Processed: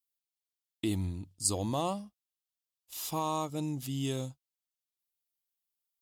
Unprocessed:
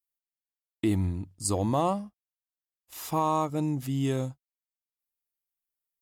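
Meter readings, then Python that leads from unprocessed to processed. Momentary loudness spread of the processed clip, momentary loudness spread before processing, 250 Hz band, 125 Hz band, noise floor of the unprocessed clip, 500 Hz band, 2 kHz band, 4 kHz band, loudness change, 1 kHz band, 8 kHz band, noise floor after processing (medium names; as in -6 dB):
10 LU, 11 LU, -6.0 dB, -6.0 dB, under -85 dBFS, -6.5 dB, -4.0 dB, +2.5 dB, -5.0 dB, -7.0 dB, +1.5 dB, under -85 dBFS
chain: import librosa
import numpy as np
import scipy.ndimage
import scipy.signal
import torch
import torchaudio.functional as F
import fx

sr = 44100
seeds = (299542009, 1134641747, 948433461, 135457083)

y = fx.high_shelf_res(x, sr, hz=2500.0, db=7.0, q=1.5)
y = y * librosa.db_to_amplitude(-6.0)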